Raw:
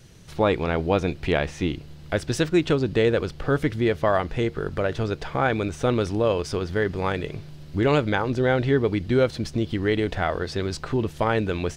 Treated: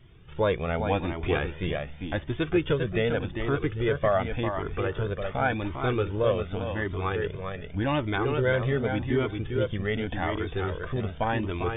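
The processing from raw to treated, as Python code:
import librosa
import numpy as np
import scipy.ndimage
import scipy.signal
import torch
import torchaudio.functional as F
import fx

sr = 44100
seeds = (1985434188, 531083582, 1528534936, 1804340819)

y = fx.brickwall_lowpass(x, sr, high_hz=3700.0)
y = fx.echo_feedback(y, sr, ms=399, feedback_pct=17, wet_db=-5.5)
y = fx.comb_cascade(y, sr, direction='rising', hz=0.87)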